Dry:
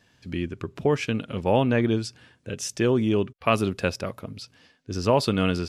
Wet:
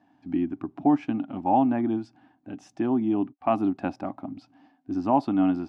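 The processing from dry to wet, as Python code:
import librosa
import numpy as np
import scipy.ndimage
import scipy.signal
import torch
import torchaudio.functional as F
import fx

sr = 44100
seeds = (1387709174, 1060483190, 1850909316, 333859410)

p1 = fx.rider(x, sr, range_db=4, speed_s=0.5)
p2 = x + (p1 * 10.0 ** (0.0 / 20.0))
p3 = fx.double_bandpass(p2, sr, hz=470.0, octaves=1.4)
y = p3 * 10.0 ** (4.0 / 20.0)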